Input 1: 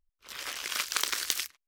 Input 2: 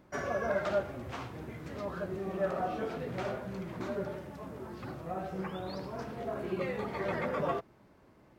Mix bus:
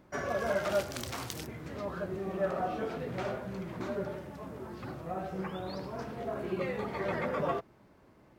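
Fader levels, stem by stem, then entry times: -12.5 dB, +0.5 dB; 0.00 s, 0.00 s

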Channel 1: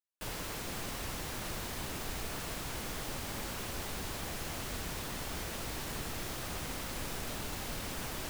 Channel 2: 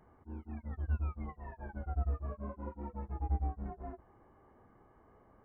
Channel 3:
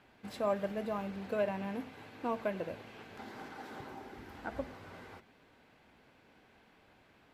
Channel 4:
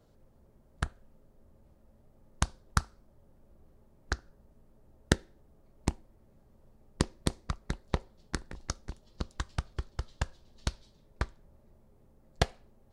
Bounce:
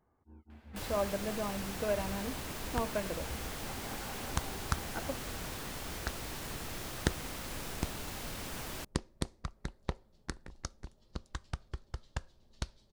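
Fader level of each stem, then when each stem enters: -2.0 dB, -11.5 dB, -0.5 dB, -5.5 dB; 0.55 s, 0.00 s, 0.50 s, 1.95 s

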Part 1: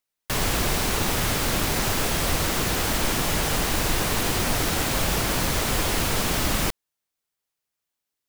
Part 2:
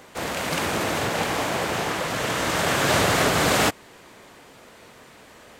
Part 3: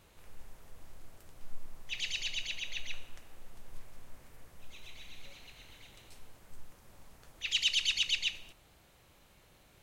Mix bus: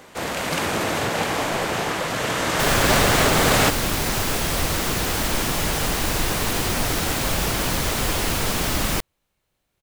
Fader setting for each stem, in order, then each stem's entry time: +1.0 dB, +1.5 dB, -13.0 dB; 2.30 s, 0.00 s, 0.00 s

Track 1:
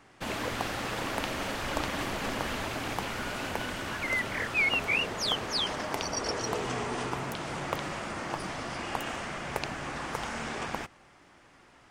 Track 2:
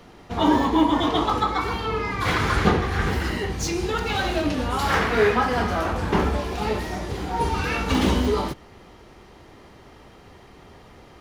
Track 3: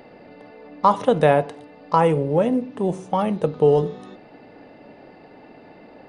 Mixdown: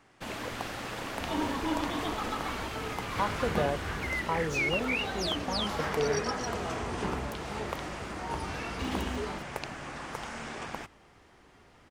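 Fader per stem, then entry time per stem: -4.0 dB, -13.5 dB, -14.5 dB; 0.00 s, 0.90 s, 2.35 s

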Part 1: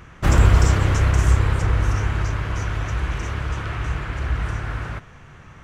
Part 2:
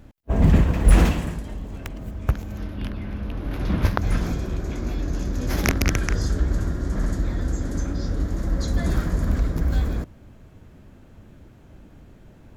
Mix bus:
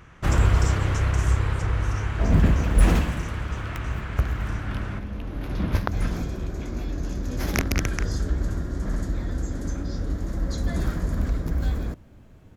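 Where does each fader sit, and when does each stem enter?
-5.0 dB, -3.0 dB; 0.00 s, 1.90 s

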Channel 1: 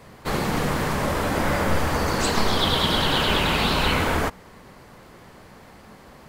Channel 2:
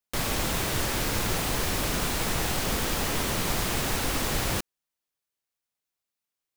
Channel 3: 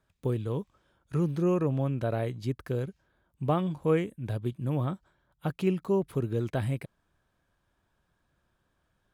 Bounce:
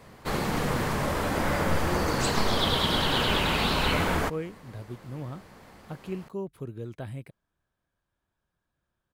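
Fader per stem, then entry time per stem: -4.0 dB, mute, -8.0 dB; 0.00 s, mute, 0.45 s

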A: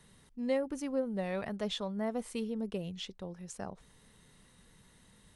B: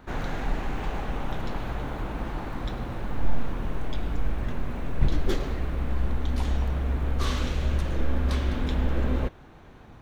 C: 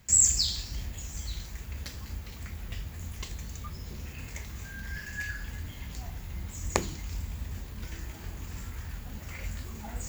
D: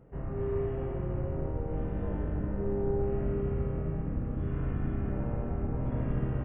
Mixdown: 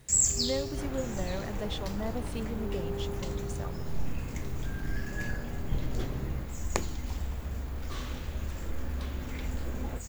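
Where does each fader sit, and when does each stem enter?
-1.5 dB, -10.5 dB, -3.5 dB, -6.5 dB; 0.00 s, 0.70 s, 0.00 s, 0.00 s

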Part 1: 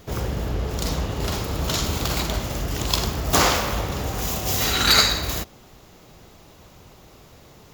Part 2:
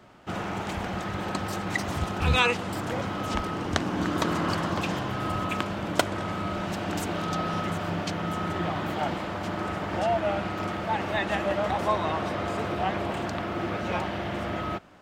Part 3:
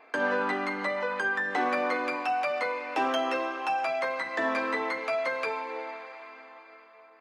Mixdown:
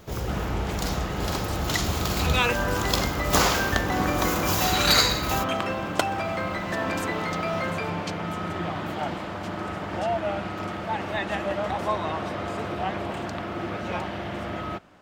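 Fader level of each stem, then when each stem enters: -3.5 dB, -1.0 dB, -1.5 dB; 0.00 s, 0.00 s, 2.35 s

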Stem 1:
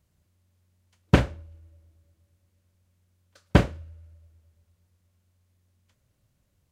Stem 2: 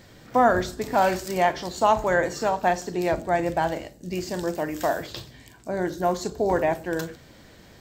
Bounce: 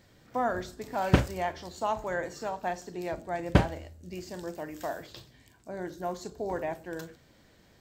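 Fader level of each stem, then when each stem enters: -4.0 dB, -10.5 dB; 0.00 s, 0.00 s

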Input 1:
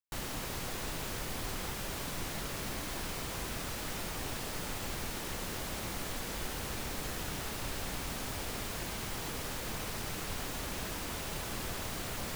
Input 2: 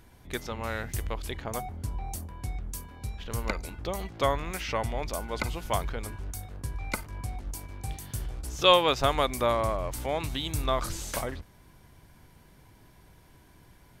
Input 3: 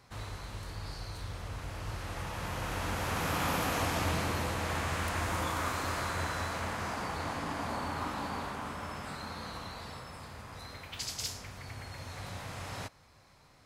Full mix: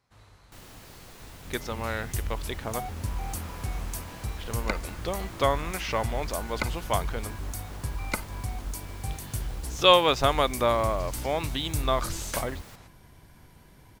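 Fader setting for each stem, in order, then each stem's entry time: -10.0 dB, +2.0 dB, -13.5 dB; 0.40 s, 1.20 s, 0.00 s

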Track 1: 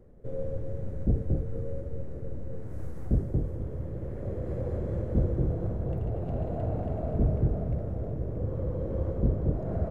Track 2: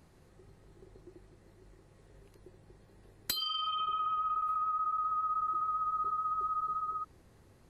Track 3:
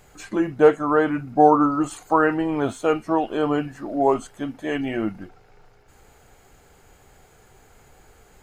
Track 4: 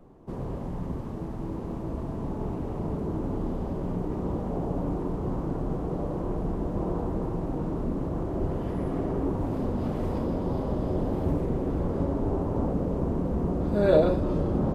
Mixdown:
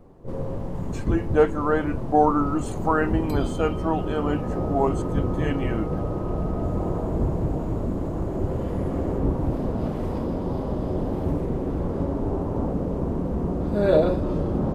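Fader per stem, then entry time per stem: 0.0 dB, -13.0 dB, -4.0 dB, +1.5 dB; 0.00 s, 0.00 s, 0.75 s, 0.00 s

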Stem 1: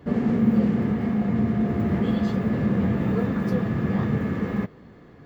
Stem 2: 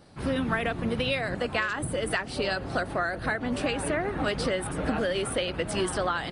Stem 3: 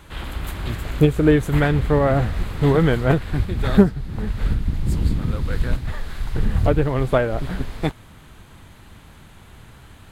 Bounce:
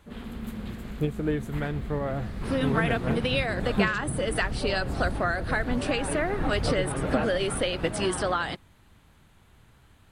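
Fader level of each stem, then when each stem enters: -18.0 dB, +1.0 dB, -12.5 dB; 0.00 s, 2.25 s, 0.00 s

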